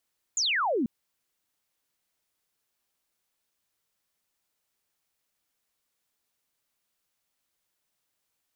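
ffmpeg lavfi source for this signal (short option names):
-f lavfi -i "aevalsrc='0.0668*clip(t/0.002,0,1)*clip((0.49-t)/0.002,0,1)*sin(2*PI*7300*0.49/log(210/7300)*(exp(log(210/7300)*t/0.49)-1))':d=0.49:s=44100"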